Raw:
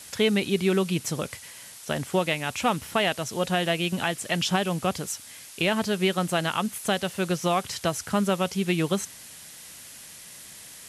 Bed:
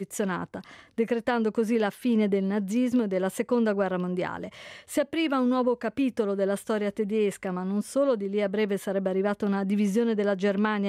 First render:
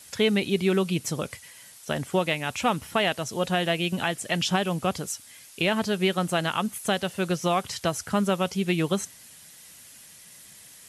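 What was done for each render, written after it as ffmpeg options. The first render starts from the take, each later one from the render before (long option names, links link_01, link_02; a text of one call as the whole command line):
ffmpeg -i in.wav -af "afftdn=noise_reduction=6:noise_floor=-45" out.wav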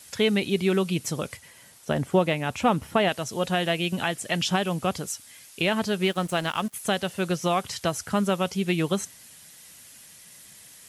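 ffmpeg -i in.wav -filter_complex "[0:a]asettb=1/sr,asplit=3[link_01][link_02][link_03];[link_01]atrim=end=1.374[link_04];[link_02]atrim=start=1.37:end=3.09,asetpts=PTS-STARTPTS,afade=type=in:duration=0.004:curve=qsin,afade=type=out:start_time=1.716:duration=0.004:curve=qsin,tiltshelf=frequency=1400:gain=4.5[link_05];[link_03]atrim=start=3.086[link_06];[link_04][link_05]acrossfade=duration=0.004:curve1=hsin:curve2=qsin[link_07];[link_07][link_06]acrossfade=duration=0.004:curve1=qsin:curve2=hsin,asettb=1/sr,asplit=3[link_08][link_09][link_10];[link_08]atrim=end=6.024[link_11];[link_09]atrim=start=6.02:end=6.74,asetpts=PTS-STARTPTS,afade=type=in:duration=0.004:curve=qsin,afade=type=out:start_time=0.716:duration=0.004:curve=qsin,aeval=exprs='sgn(val(0))*max(abs(val(0))-0.00794,0)':channel_layout=same[link_12];[link_10]atrim=start=6.736[link_13];[link_11][link_12]acrossfade=duration=0.004:curve1=hsin:curve2=qsin[link_14];[link_14][link_13]acrossfade=duration=0.004:curve1=qsin:curve2=hsin" out.wav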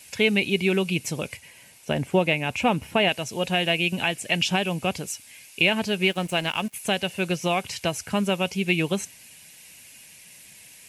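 ffmpeg -i in.wav -af "superequalizer=10b=0.562:12b=2.51" out.wav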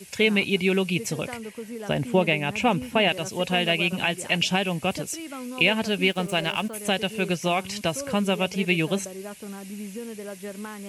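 ffmpeg -i in.wav -i bed.wav -filter_complex "[1:a]volume=-11.5dB[link_01];[0:a][link_01]amix=inputs=2:normalize=0" out.wav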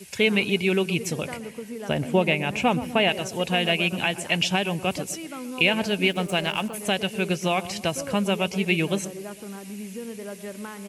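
ffmpeg -i in.wav -filter_complex "[0:a]asplit=2[link_01][link_02];[link_02]adelay=124,lowpass=frequency=1000:poles=1,volume=-12.5dB,asplit=2[link_03][link_04];[link_04]adelay=124,lowpass=frequency=1000:poles=1,volume=0.48,asplit=2[link_05][link_06];[link_06]adelay=124,lowpass=frequency=1000:poles=1,volume=0.48,asplit=2[link_07][link_08];[link_08]adelay=124,lowpass=frequency=1000:poles=1,volume=0.48,asplit=2[link_09][link_10];[link_10]adelay=124,lowpass=frequency=1000:poles=1,volume=0.48[link_11];[link_01][link_03][link_05][link_07][link_09][link_11]amix=inputs=6:normalize=0" out.wav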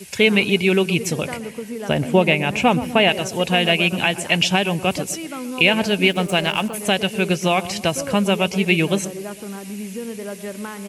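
ffmpeg -i in.wav -af "volume=5.5dB,alimiter=limit=-2dB:level=0:latency=1" out.wav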